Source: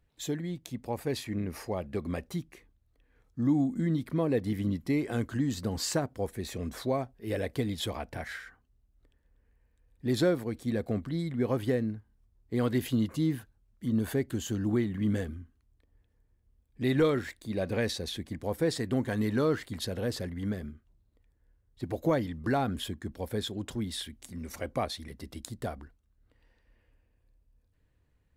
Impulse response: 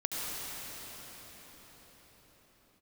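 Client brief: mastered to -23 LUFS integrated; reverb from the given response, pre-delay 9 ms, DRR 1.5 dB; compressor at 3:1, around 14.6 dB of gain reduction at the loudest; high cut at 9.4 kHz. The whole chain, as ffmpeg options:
-filter_complex "[0:a]lowpass=9400,acompressor=threshold=0.00794:ratio=3,asplit=2[s0][s1];[1:a]atrim=start_sample=2205,adelay=9[s2];[s1][s2]afir=irnorm=-1:irlink=0,volume=0.398[s3];[s0][s3]amix=inputs=2:normalize=0,volume=7.94"

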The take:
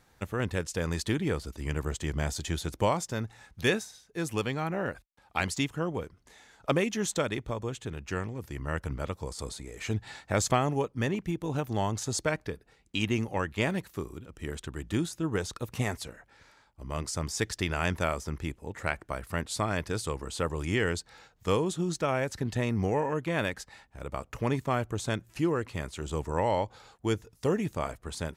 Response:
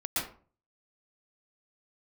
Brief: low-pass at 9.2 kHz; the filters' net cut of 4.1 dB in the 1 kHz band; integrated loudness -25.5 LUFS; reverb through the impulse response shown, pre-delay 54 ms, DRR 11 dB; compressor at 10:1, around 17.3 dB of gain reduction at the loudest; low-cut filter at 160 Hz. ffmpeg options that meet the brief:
-filter_complex "[0:a]highpass=160,lowpass=9200,equalizer=f=1000:t=o:g=-5.5,acompressor=threshold=0.00891:ratio=10,asplit=2[s0][s1];[1:a]atrim=start_sample=2205,adelay=54[s2];[s1][s2]afir=irnorm=-1:irlink=0,volume=0.133[s3];[s0][s3]amix=inputs=2:normalize=0,volume=11.2"

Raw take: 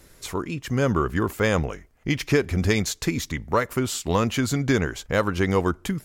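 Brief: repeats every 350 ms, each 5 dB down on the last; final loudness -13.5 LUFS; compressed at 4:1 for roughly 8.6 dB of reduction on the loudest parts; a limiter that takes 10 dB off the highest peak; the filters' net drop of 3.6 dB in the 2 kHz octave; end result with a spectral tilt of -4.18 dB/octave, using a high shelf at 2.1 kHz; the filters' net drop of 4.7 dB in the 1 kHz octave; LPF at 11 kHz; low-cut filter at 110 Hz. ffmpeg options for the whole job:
-af "highpass=110,lowpass=11000,equalizer=f=1000:t=o:g=-5.5,equalizer=f=2000:t=o:g=-6,highshelf=f=2100:g=6,acompressor=threshold=0.0447:ratio=4,alimiter=level_in=1.26:limit=0.0631:level=0:latency=1,volume=0.794,aecho=1:1:350|700|1050|1400|1750|2100|2450:0.562|0.315|0.176|0.0988|0.0553|0.031|0.0173,volume=11.2"

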